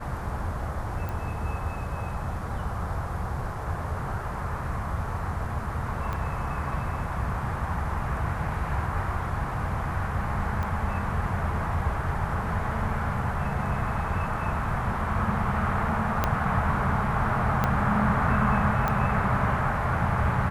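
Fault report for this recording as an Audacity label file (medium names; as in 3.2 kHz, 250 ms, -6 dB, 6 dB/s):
1.090000	1.090000	pop
6.130000	6.130000	pop -19 dBFS
10.630000	10.630000	pop -20 dBFS
16.240000	16.240000	pop -9 dBFS
17.640000	17.640000	pop -11 dBFS
18.880000	18.880000	pop -14 dBFS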